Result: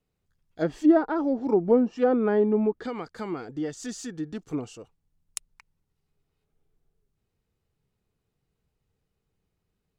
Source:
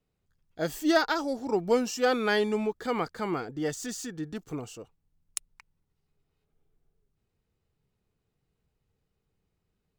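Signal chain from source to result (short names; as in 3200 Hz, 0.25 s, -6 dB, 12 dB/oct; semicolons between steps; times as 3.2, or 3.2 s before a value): 2.73–4.48 compressor, threshold -32 dBFS, peak gain reduction 8.5 dB; dynamic EQ 280 Hz, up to +8 dB, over -40 dBFS, Q 0.89; treble ducked by the level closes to 950 Hz, closed at -18.5 dBFS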